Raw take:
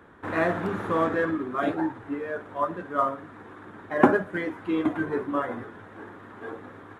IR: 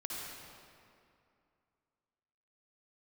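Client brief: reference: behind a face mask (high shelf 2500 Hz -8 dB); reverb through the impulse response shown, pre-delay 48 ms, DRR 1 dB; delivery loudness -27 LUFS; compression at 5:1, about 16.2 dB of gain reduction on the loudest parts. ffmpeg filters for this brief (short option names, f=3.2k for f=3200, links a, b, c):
-filter_complex "[0:a]acompressor=threshold=-32dB:ratio=5,asplit=2[a][b];[1:a]atrim=start_sample=2205,adelay=48[c];[b][c]afir=irnorm=-1:irlink=0,volume=-2.5dB[d];[a][d]amix=inputs=2:normalize=0,highshelf=f=2.5k:g=-8,volume=8dB"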